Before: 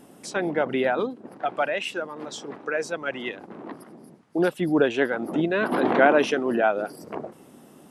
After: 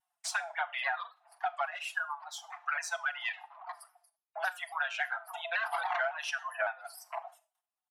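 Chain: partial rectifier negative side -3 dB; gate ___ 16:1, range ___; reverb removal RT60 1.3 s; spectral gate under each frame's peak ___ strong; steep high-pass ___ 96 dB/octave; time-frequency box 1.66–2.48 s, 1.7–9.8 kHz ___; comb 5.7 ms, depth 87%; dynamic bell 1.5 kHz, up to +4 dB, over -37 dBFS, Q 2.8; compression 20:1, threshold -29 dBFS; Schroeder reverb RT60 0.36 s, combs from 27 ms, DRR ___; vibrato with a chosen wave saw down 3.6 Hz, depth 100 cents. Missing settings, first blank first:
-46 dBFS, -30 dB, -55 dB, 670 Hz, -7 dB, 14.5 dB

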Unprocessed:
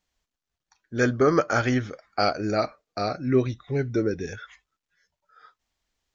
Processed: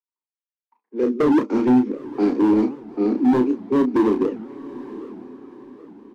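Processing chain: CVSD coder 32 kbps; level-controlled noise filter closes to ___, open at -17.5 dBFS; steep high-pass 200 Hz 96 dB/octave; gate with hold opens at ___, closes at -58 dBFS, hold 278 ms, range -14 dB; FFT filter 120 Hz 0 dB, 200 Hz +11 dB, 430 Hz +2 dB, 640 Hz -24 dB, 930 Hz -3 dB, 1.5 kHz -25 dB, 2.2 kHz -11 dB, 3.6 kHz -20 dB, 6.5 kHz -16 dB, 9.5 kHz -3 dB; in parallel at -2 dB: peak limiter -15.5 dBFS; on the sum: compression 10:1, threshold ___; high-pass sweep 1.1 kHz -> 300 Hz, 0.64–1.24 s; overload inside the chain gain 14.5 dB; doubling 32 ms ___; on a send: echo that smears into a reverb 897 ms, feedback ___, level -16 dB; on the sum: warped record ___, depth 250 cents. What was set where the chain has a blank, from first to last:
1.5 kHz, -49 dBFS, -15 dBFS, -6 dB, 42%, 78 rpm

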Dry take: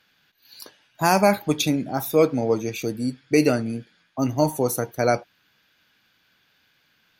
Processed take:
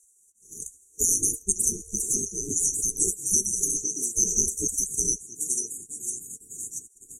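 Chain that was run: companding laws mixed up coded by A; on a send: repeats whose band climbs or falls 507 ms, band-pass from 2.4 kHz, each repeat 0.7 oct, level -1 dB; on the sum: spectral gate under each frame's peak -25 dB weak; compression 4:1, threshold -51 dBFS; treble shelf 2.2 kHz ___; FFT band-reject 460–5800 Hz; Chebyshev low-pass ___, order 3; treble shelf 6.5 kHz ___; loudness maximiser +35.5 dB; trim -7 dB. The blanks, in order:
+8 dB, 9.3 kHz, -2.5 dB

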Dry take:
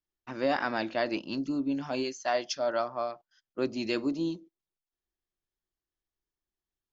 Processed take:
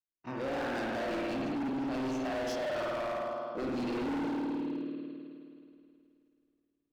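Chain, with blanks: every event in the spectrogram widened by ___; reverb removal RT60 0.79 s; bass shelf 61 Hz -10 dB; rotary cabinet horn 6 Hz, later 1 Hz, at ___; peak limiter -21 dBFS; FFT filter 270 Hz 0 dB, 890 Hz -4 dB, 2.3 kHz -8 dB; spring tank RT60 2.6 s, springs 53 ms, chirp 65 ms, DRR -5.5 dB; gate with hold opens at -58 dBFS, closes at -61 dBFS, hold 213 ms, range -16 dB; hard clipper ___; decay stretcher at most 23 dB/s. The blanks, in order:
60 ms, 3.59 s, -32 dBFS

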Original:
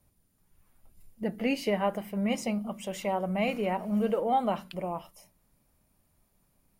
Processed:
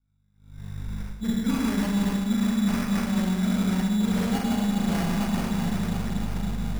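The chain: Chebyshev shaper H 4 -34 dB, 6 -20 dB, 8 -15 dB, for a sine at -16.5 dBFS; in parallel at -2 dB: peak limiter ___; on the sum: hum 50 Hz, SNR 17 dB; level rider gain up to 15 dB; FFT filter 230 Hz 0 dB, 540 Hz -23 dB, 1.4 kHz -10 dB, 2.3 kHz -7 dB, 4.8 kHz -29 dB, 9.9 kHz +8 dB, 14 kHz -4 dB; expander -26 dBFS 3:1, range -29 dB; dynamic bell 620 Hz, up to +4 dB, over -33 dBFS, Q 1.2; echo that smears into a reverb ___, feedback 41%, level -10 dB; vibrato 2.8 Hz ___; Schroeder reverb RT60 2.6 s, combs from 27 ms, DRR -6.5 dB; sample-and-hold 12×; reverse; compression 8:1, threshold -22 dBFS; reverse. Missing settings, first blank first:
-25 dBFS, 707 ms, 25 cents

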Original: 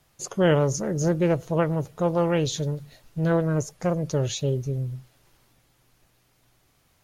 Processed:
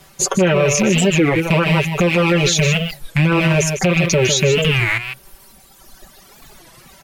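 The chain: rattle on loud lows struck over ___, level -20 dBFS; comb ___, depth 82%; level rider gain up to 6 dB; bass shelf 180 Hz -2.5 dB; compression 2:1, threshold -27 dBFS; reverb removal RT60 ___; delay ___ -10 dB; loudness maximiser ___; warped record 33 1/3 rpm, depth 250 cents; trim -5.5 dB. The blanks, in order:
-34 dBFS, 5.2 ms, 1.9 s, 153 ms, +22 dB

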